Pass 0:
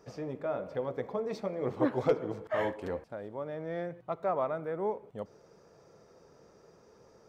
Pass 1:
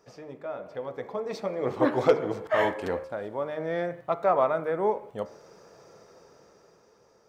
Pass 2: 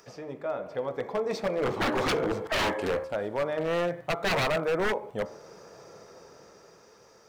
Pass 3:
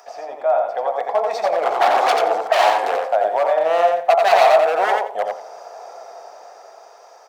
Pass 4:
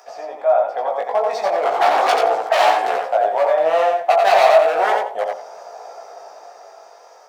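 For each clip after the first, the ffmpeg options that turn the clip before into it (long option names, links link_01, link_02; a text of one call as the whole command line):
ffmpeg -i in.wav -af "lowshelf=frequency=370:gain=-7.5,dynaudnorm=framelen=250:gausssize=11:maxgain=10dB,bandreject=frequency=76:width_type=h:width=4,bandreject=frequency=152:width_type=h:width=4,bandreject=frequency=228:width_type=h:width=4,bandreject=frequency=304:width_type=h:width=4,bandreject=frequency=380:width_type=h:width=4,bandreject=frequency=456:width_type=h:width=4,bandreject=frequency=532:width_type=h:width=4,bandreject=frequency=608:width_type=h:width=4,bandreject=frequency=684:width_type=h:width=4,bandreject=frequency=760:width_type=h:width=4,bandreject=frequency=836:width_type=h:width=4,bandreject=frequency=912:width_type=h:width=4,bandreject=frequency=988:width_type=h:width=4,bandreject=frequency=1064:width_type=h:width=4,bandreject=frequency=1140:width_type=h:width=4,bandreject=frequency=1216:width_type=h:width=4,bandreject=frequency=1292:width_type=h:width=4,bandreject=frequency=1368:width_type=h:width=4,bandreject=frequency=1444:width_type=h:width=4,bandreject=frequency=1520:width_type=h:width=4,bandreject=frequency=1596:width_type=h:width=4,bandreject=frequency=1672:width_type=h:width=4,bandreject=frequency=1748:width_type=h:width=4,bandreject=frequency=1824:width_type=h:width=4,bandreject=frequency=1900:width_type=h:width=4,bandreject=frequency=1976:width_type=h:width=4,bandreject=frequency=2052:width_type=h:width=4,bandreject=frequency=2128:width_type=h:width=4,bandreject=frequency=2204:width_type=h:width=4,bandreject=frequency=2280:width_type=h:width=4,bandreject=frequency=2356:width_type=h:width=4" out.wav
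ffmpeg -i in.wav -filter_complex "[0:a]acrossover=split=1300[link_01][link_02];[link_02]acompressor=mode=upward:threshold=-58dB:ratio=2.5[link_03];[link_01][link_03]amix=inputs=2:normalize=0,aeval=exprs='0.0596*(abs(mod(val(0)/0.0596+3,4)-2)-1)':channel_layout=same,volume=3.5dB" out.wav
ffmpeg -i in.wav -filter_complex "[0:a]highpass=frequency=720:width_type=q:width=8.4,asplit=2[link_01][link_02];[link_02]aecho=0:1:88|176|264:0.631|0.114|0.0204[link_03];[link_01][link_03]amix=inputs=2:normalize=0,volume=4.5dB" out.wav
ffmpeg -i in.wav -af "flanger=delay=16:depth=4.5:speed=0.35,volume=3.5dB" out.wav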